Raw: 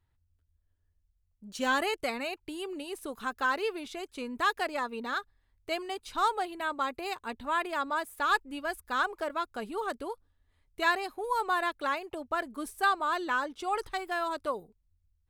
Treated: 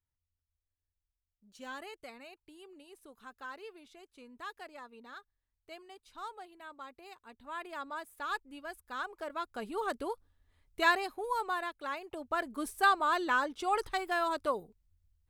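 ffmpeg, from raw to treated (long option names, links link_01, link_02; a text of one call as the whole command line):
ffmpeg -i in.wav -af "volume=10.5dB,afade=type=in:start_time=7.32:duration=0.41:silence=0.473151,afade=type=in:start_time=9.08:duration=0.99:silence=0.316228,afade=type=out:start_time=10.83:duration=0.95:silence=0.316228,afade=type=in:start_time=11.78:duration=0.85:silence=0.316228" out.wav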